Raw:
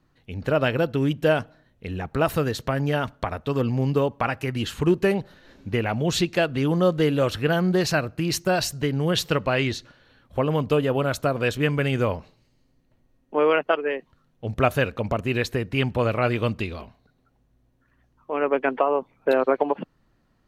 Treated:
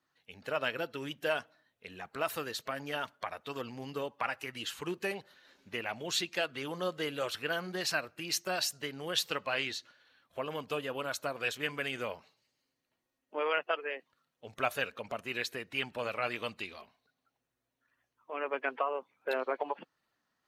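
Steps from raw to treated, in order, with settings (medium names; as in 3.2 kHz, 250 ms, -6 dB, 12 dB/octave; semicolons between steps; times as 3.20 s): coarse spectral quantiser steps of 15 dB; high-pass 1.4 kHz 6 dB/octave; trim -4 dB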